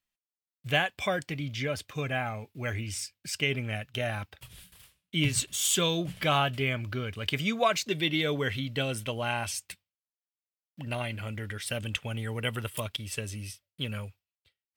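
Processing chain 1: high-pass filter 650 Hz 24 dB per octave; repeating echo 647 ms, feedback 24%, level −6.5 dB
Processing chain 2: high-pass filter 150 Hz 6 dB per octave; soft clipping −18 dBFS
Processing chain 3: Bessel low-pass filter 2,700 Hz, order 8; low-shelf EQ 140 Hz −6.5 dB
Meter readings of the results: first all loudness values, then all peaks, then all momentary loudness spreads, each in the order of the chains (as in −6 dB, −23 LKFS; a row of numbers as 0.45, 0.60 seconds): −32.0, −32.0, −33.0 LKFS; −11.5, −18.5, −13.5 dBFS; 14, 12, 13 LU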